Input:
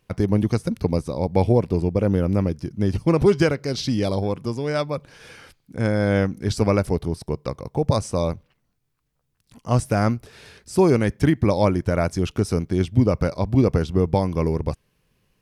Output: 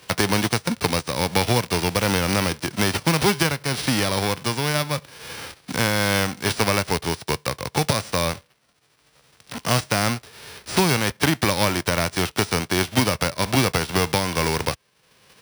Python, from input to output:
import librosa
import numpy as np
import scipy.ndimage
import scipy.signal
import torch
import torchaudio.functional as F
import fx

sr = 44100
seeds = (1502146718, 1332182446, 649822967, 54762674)

y = fx.envelope_flatten(x, sr, power=0.3)
y = scipy.signal.sosfilt(scipy.signal.butter(2, 64.0, 'highpass', fs=sr, output='sos'), y)
y = fx.notch(y, sr, hz=6600.0, q=12.0)
y = np.repeat(scipy.signal.resample_poly(y, 1, 3), 3)[:len(y)]
y = fx.band_squash(y, sr, depth_pct=70)
y = y * librosa.db_to_amplitude(-1.0)